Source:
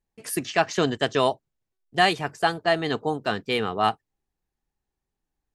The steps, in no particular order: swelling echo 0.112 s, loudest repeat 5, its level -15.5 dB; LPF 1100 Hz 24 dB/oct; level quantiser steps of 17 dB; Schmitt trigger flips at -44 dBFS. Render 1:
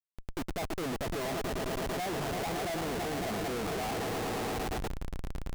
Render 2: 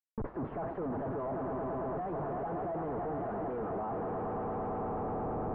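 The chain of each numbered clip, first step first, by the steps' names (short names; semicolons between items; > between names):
swelling echo > level quantiser > LPF > Schmitt trigger; swelling echo > Schmitt trigger > level quantiser > LPF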